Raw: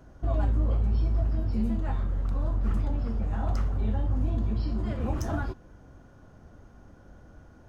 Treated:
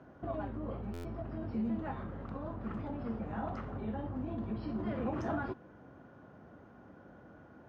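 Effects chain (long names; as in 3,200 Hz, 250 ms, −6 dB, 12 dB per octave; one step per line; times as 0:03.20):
brickwall limiter −23.5 dBFS, peak gain reduction 7.5 dB
band-pass filter 160–2,500 Hz
buffer that repeats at 0:00.93, samples 512, times 9
level +1 dB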